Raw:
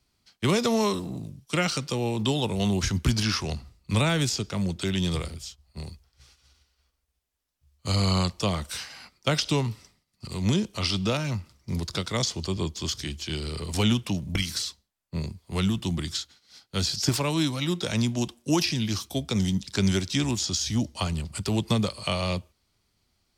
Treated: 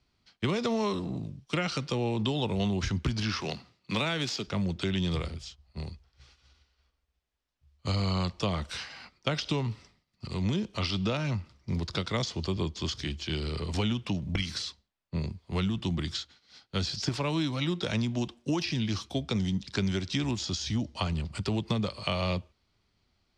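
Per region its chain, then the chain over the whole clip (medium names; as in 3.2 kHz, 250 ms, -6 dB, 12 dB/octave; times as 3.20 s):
3.41–4.47 s: median filter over 5 samples + Bessel high-pass 190 Hz, order 4 + treble shelf 2.7 kHz +8.5 dB
whole clip: compression, threshold -25 dBFS; low-pass 4.4 kHz 12 dB/octave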